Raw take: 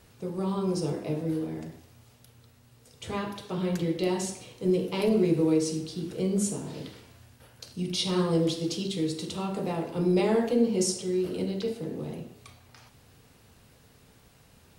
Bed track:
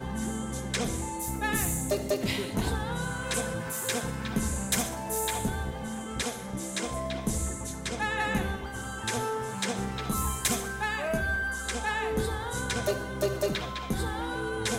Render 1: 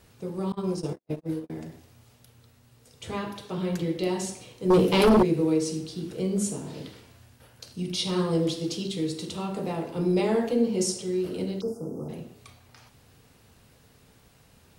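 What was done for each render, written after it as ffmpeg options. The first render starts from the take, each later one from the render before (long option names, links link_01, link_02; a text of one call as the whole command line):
ffmpeg -i in.wav -filter_complex "[0:a]asettb=1/sr,asplit=3[link_01][link_02][link_03];[link_01]atrim=end=0.524[link_04];[link_02]atrim=start=0.52:end=1.5,asetpts=PTS-STARTPTS,afade=type=in:duration=0.004:curve=qsin,afade=type=out:start_time=0.976:duration=0.004:curve=qsin,agate=range=-57dB:threshold=-30dB:ratio=16:release=100:detection=peak[link_05];[link_03]atrim=start=1.496[link_06];[link_04][link_05]acrossfade=duration=0.004:curve1=hsin:curve2=qsin[link_07];[link_07][link_06]acrossfade=duration=0.004:curve1=qsin:curve2=hsin,asettb=1/sr,asplit=3[link_08][link_09][link_10];[link_08]atrim=end=4.704[link_11];[link_09]atrim=start=4.7:end=5.23,asetpts=PTS-STARTPTS,afade=type=in:duration=0.004:curve=qsin,afade=type=out:start_time=0.526:duration=0.004:curve=qsin,aeval=exprs='0.2*sin(PI/2*2.24*val(0)/0.2)':channel_layout=same[link_12];[link_10]atrim=start=5.226[link_13];[link_11][link_12]acrossfade=duration=0.004:curve1=hsin:curve2=qsin[link_14];[link_14][link_13]acrossfade=duration=0.004:curve1=qsin:curve2=hsin,asplit=3[link_15][link_16][link_17];[link_15]afade=type=out:start_time=11.6:duration=0.02[link_18];[link_16]asuperstop=centerf=2700:order=20:qfactor=0.74,afade=type=in:start_time=11.6:duration=0.02,afade=type=out:start_time=12.08:duration=0.02[link_19];[link_17]afade=type=in:start_time=12.08:duration=0.02[link_20];[link_18][link_19][link_20]amix=inputs=3:normalize=0" out.wav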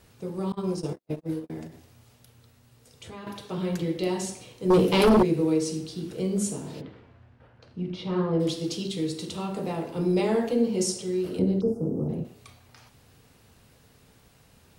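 ffmpeg -i in.wav -filter_complex "[0:a]asettb=1/sr,asplit=3[link_01][link_02][link_03];[link_01]atrim=end=1.674[link_04];[link_02]atrim=start=1.67:end=3.27,asetpts=PTS-STARTPTS,afade=type=in:duration=0.004:curve=qsin,afade=type=out:start_time=1.596:duration=0.004:curve=qsin,acompressor=threshold=-42dB:ratio=2.5:attack=3.2:release=140:knee=1:detection=peak[link_05];[link_03]atrim=start=3.266[link_06];[link_04][link_05]acrossfade=duration=0.004:curve1=hsin:curve2=qsin[link_07];[link_07][link_06]acrossfade=duration=0.004:curve1=qsin:curve2=hsin,asplit=3[link_08][link_09][link_10];[link_08]afade=type=out:start_time=6.8:duration=0.02[link_11];[link_09]lowpass=1800,afade=type=in:start_time=6.8:duration=0.02,afade=type=out:start_time=8.39:duration=0.02[link_12];[link_10]afade=type=in:start_time=8.39:duration=0.02[link_13];[link_11][link_12][link_13]amix=inputs=3:normalize=0,asettb=1/sr,asplit=3[link_14][link_15][link_16];[link_14]atrim=end=11.394[link_17];[link_15]atrim=start=11.39:end=12.25,asetpts=PTS-STARTPTS,afade=type=in:duration=0.004:curve=qsin,afade=type=out:start_time=0.856:duration=0.004:curve=qsin,tiltshelf=frequency=830:gain=9[link_18];[link_16]atrim=start=12.246[link_19];[link_17][link_18]acrossfade=duration=0.004:curve1=hsin:curve2=qsin[link_20];[link_20][link_19]acrossfade=duration=0.004:curve1=qsin:curve2=hsin" out.wav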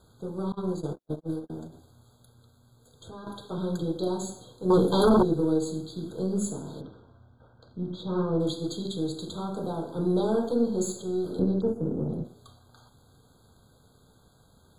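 ffmpeg -i in.wav -af "aeval=exprs='if(lt(val(0),0),0.708*val(0),val(0))':channel_layout=same,afftfilt=real='re*eq(mod(floor(b*sr/1024/1600),2),0)':imag='im*eq(mod(floor(b*sr/1024/1600),2),0)':win_size=1024:overlap=0.75" out.wav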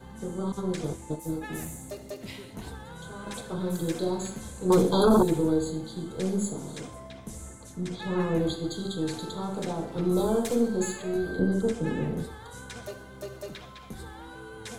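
ffmpeg -i in.wav -i bed.wav -filter_complex "[1:a]volume=-11dB[link_01];[0:a][link_01]amix=inputs=2:normalize=0" out.wav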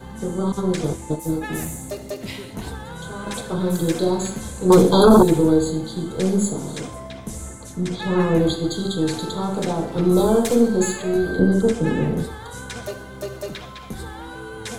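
ffmpeg -i in.wav -af "volume=8.5dB" out.wav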